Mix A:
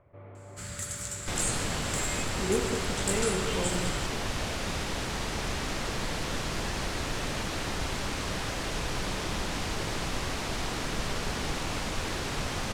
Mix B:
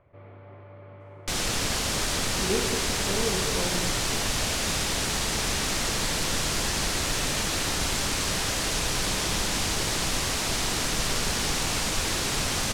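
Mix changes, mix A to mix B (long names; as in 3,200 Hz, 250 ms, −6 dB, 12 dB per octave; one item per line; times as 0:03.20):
first sound: muted
second sound: send +10.5 dB
master: add high-shelf EQ 3,700 Hz +12 dB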